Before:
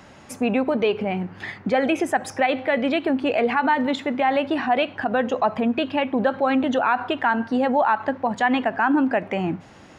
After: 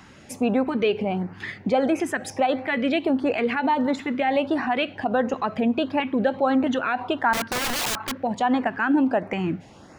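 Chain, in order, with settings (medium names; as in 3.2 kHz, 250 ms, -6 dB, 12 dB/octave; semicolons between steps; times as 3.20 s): LFO notch saw up 1.5 Hz 490–3700 Hz; 7.33–8.13 s: integer overflow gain 21 dB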